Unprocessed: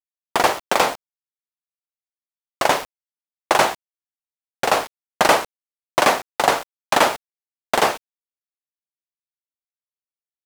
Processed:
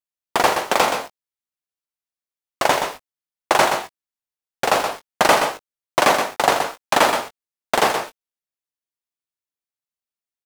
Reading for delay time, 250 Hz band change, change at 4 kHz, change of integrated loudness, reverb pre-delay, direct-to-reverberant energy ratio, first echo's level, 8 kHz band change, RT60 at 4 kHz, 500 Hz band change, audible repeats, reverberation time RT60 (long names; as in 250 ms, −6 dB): 124 ms, +1.0 dB, +1.0 dB, +0.5 dB, no reverb audible, no reverb audible, −7.0 dB, +1.0 dB, no reverb audible, +1.0 dB, 1, no reverb audible